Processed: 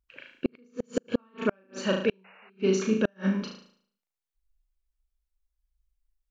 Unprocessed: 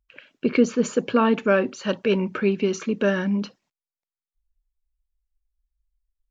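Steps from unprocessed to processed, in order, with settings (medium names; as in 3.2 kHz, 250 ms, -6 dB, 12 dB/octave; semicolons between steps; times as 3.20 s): flutter echo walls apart 6.3 m, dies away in 0.56 s; painted sound noise, 2.24–2.50 s, 410–2900 Hz -12 dBFS; inverted gate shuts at -10 dBFS, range -40 dB; trim -2.5 dB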